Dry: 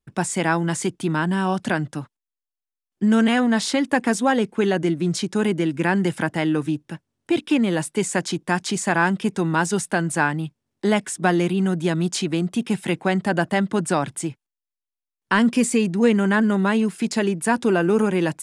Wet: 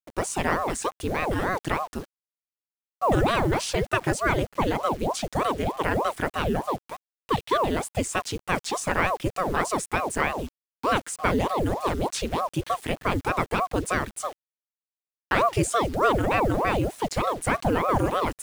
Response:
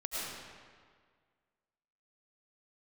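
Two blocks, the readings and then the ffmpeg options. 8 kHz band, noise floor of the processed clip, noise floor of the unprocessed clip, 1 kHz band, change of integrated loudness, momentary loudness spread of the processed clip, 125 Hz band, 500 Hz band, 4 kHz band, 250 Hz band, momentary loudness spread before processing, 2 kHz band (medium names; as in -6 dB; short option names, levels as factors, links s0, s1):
-4.5 dB, under -85 dBFS, under -85 dBFS, +1.0 dB, -4.5 dB, 6 LU, -4.5 dB, -3.0 dB, -3.5 dB, -10.0 dB, 6 LU, -4.5 dB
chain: -af "acrusher=bits=6:mix=0:aa=0.000001,aeval=exprs='val(0)*sin(2*PI*510*n/s+510*0.85/3.3*sin(2*PI*3.3*n/s))':c=same,volume=0.841"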